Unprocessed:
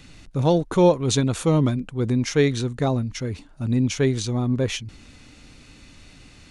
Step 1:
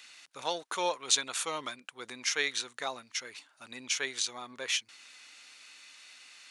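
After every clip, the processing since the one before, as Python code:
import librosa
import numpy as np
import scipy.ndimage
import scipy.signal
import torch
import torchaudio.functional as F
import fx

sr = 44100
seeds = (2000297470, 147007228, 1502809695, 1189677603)

y = scipy.signal.sosfilt(scipy.signal.butter(2, 1300.0, 'highpass', fs=sr, output='sos'), x)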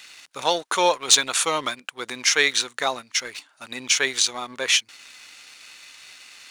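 y = fx.leveller(x, sr, passes=1)
y = y * librosa.db_to_amplitude(8.0)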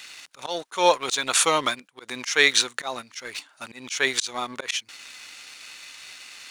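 y = fx.auto_swell(x, sr, attack_ms=187.0)
y = y * librosa.db_to_amplitude(2.5)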